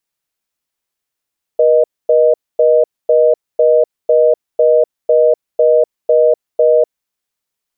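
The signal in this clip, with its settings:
call progress tone reorder tone, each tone −9.5 dBFS 5.46 s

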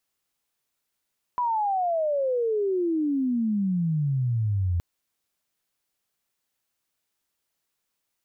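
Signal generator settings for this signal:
glide logarithmic 1,000 Hz → 84 Hz −22 dBFS → −21.5 dBFS 3.42 s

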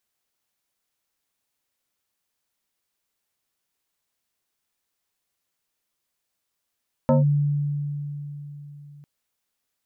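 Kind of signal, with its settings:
two-operator FM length 1.95 s, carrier 145 Hz, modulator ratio 2.65, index 1.8, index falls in 0.15 s linear, decay 3.88 s, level −13.5 dB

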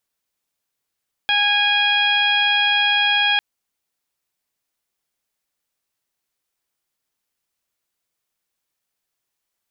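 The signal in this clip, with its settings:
steady harmonic partials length 2.10 s, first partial 823 Hz, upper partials 3/3/5/−14/−15 dB, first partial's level −23.5 dB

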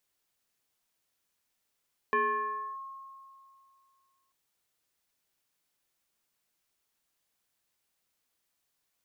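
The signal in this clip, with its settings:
two-operator FM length 2.19 s, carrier 1,080 Hz, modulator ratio 0.61, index 1.1, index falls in 0.65 s linear, decay 2.44 s, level −22.5 dB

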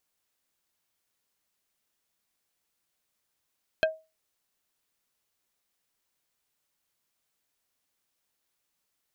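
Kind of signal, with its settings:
struck wood plate, lowest mode 636 Hz, decay 0.27 s, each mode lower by 3 dB, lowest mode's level −17.5 dB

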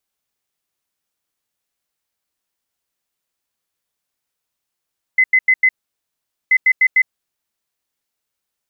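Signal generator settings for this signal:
beeps in groups sine 2,040 Hz, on 0.06 s, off 0.09 s, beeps 4, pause 0.82 s, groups 2, −8.5 dBFS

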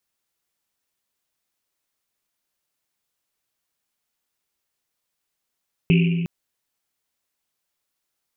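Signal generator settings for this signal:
drum after Risset length 0.36 s, pitch 170 Hz, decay 2.18 s, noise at 2,600 Hz, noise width 620 Hz, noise 15%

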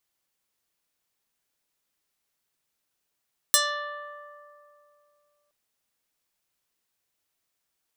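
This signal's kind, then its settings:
Karplus-Strong string D5, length 1.97 s, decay 2.77 s, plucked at 0.25, medium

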